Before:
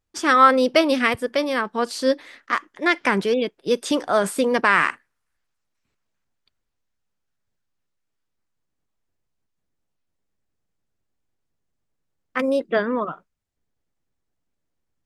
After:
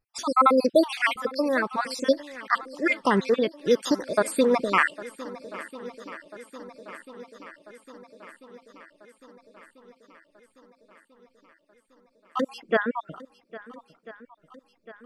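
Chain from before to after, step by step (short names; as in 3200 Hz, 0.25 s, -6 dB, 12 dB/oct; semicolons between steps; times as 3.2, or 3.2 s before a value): random spectral dropouts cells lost 56%; swung echo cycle 1.342 s, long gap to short 1.5:1, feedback 58%, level -18.5 dB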